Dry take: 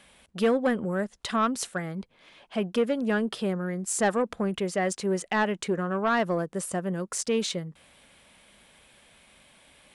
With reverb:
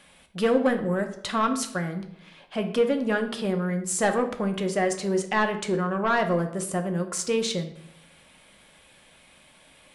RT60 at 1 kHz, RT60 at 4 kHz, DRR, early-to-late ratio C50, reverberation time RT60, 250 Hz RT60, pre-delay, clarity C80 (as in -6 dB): 0.65 s, 0.50 s, 5.0 dB, 10.5 dB, 0.70 s, 0.80 s, 4 ms, 14.0 dB